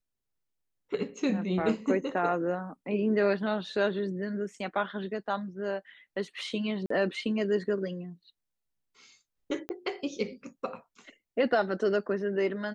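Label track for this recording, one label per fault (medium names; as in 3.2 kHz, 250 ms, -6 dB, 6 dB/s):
6.860000	6.900000	dropout 44 ms
9.690000	9.690000	pop -21 dBFS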